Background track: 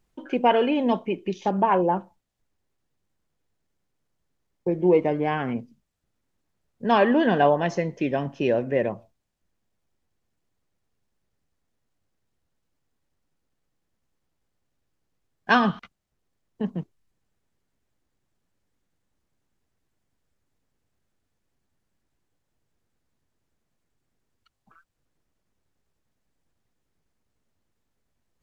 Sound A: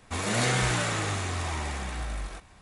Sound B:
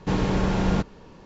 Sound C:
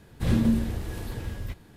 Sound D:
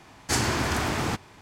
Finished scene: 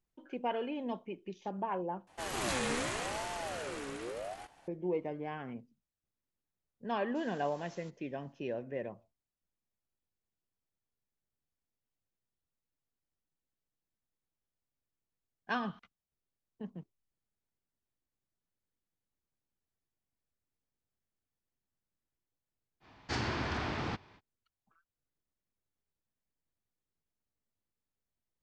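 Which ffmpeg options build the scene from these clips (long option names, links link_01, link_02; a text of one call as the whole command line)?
ffmpeg -i bed.wav -i cue0.wav -i cue1.wav -i cue2.wav -i cue3.wav -filter_complex "[0:a]volume=-15.5dB[link_01];[1:a]aeval=exprs='val(0)*sin(2*PI*570*n/s+570*0.4/0.82*sin(2*PI*0.82*n/s))':channel_layout=same[link_02];[2:a]aderivative[link_03];[4:a]lowpass=frequency=4800:width=0.5412,lowpass=frequency=4800:width=1.3066[link_04];[link_01]asplit=2[link_05][link_06];[link_05]atrim=end=2.074[link_07];[link_02]atrim=end=2.61,asetpts=PTS-STARTPTS,volume=-5.5dB[link_08];[link_06]atrim=start=4.676[link_09];[link_03]atrim=end=1.25,asetpts=PTS-STARTPTS,volume=-16dB,afade=type=in:duration=0.004:curve=hsin,afade=type=out:start_time=1.246:duration=0.004:curve=hsin,adelay=7080[link_10];[link_04]atrim=end=1.41,asetpts=PTS-STARTPTS,volume=-9dB,afade=type=in:duration=0.05,afade=type=out:start_time=1.36:duration=0.05,adelay=22800[link_11];[link_07][link_08]acrossfade=duration=0.004:curve1=hsin:curve2=hsin[link_12];[link_12][link_09]acrossfade=duration=0.004:curve1=hsin:curve2=hsin[link_13];[link_13][link_10][link_11]amix=inputs=3:normalize=0" out.wav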